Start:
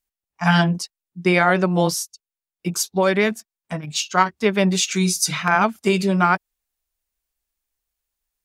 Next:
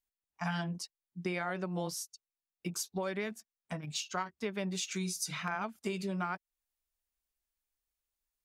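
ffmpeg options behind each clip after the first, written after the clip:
-af "acompressor=threshold=0.0447:ratio=3,volume=0.376"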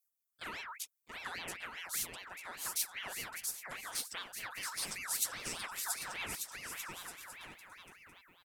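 -af "aecho=1:1:680|1190|1572|1859|2075:0.631|0.398|0.251|0.158|0.1,aexciter=amount=7.8:drive=3.1:freq=6800,aeval=exprs='val(0)*sin(2*PI*1800*n/s+1800*0.4/5*sin(2*PI*5*n/s))':c=same,volume=0.473"

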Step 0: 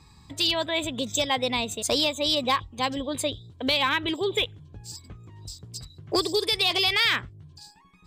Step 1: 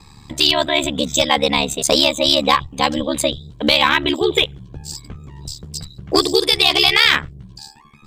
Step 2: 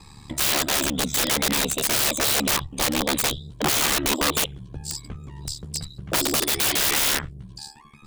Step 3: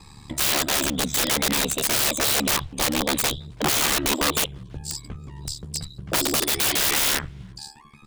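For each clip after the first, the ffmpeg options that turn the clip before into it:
-af "acontrast=46,aeval=exprs='val(0)*sin(2*PI*36*n/s)':c=same,volume=2.11"
-af "equalizer=f=9400:w=3.9:g=8.5,aeval=exprs='(mod(4.73*val(0)+1,2)-1)/4.73':c=same,volume=0.794"
-filter_complex "[0:a]asplit=2[s0][s1];[s1]adelay=330,highpass=300,lowpass=3400,asoftclip=type=hard:threshold=0.0631,volume=0.0355[s2];[s0][s2]amix=inputs=2:normalize=0"

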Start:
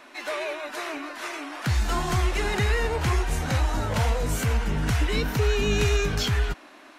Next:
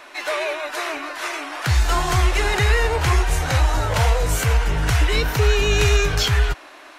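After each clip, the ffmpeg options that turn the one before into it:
-af "equalizer=f=220:w=1.9:g=-15,volume=2.24"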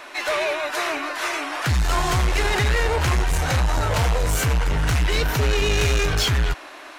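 -af "asoftclip=type=tanh:threshold=0.112,volume=1.41"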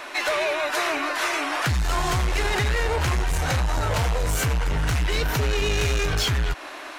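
-af "acompressor=threshold=0.0631:ratio=6,volume=1.41"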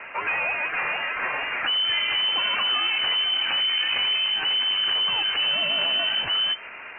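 -af "lowpass=f=2600:t=q:w=0.5098,lowpass=f=2600:t=q:w=0.6013,lowpass=f=2600:t=q:w=0.9,lowpass=f=2600:t=q:w=2.563,afreqshift=-3100,volume=0.841"

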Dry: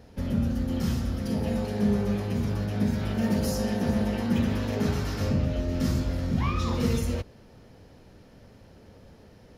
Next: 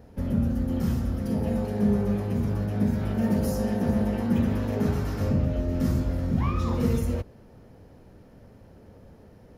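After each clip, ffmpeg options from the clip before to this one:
-af "equalizer=f=4200:w=0.53:g=-9.5,volume=1.19"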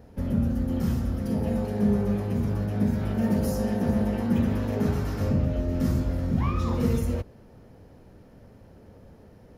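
-af anull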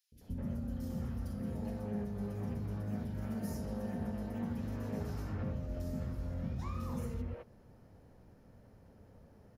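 -filter_complex "[0:a]acompressor=threshold=0.0501:ratio=6,acrossover=split=370|3100[s0][s1][s2];[s0]adelay=120[s3];[s1]adelay=210[s4];[s3][s4][s2]amix=inputs=3:normalize=0,volume=0.398"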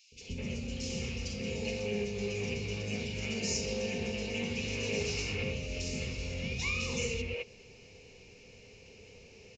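-af "aresample=16000,aresample=44100,aexciter=amount=10.5:drive=4.6:freq=2200,superequalizer=7b=3.55:12b=3.98"

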